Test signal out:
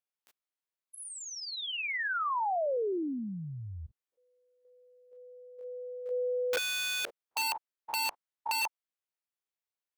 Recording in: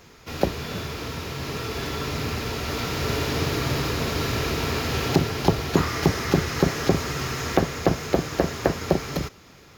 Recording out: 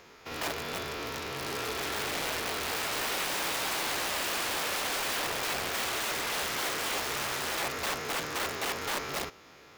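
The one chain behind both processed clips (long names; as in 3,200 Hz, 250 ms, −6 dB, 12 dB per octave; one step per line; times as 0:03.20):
spectrum averaged block by block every 50 ms
wrap-around overflow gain 24.5 dB
bass and treble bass −12 dB, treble −5 dB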